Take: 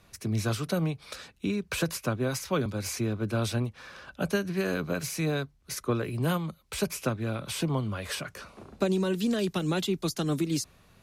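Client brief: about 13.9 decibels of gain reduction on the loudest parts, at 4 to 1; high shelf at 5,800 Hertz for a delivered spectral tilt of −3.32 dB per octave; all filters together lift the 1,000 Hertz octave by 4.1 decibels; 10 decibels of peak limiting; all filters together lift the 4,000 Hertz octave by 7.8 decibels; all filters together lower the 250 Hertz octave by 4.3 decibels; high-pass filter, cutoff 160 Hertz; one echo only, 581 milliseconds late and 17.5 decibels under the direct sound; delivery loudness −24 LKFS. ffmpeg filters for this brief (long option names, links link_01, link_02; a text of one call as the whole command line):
ffmpeg -i in.wav -af "highpass=160,equalizer=frequency=250:width_type=o:gain=-5,equalizer=frequency=1000:width_type=o:gain=5,equalizer=frequency=4000:width_type=o:gain=7.5,highshelf=frequency=5800:gain=5,acompressor=threshold=-40dB:ratio=4,alimiter=level_in=10dB:limit=-24dB:level=0:latency=1,volume=-10dB,aecho=1:1:581:0.133,volume=20dB" out.wav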